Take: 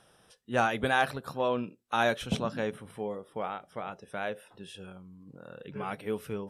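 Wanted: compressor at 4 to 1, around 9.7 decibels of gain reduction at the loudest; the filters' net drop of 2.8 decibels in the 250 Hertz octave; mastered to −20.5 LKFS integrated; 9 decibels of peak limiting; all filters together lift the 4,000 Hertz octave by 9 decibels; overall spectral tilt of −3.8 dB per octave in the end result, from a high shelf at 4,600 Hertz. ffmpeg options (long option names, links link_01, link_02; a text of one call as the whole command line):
ffmpeg -i in.wav -af "equalizer=frequency=250:width_type=o:gain=-3.5,equalizer=frequency=4000:width_type=o:gain=7.5,highshelf=frequency=4600:gain=8,acompressor=threshold=-31dB:ratio=4,volume=19.5dB,alimiter=limit=-6.5dB:level=0:latency=1" out.wav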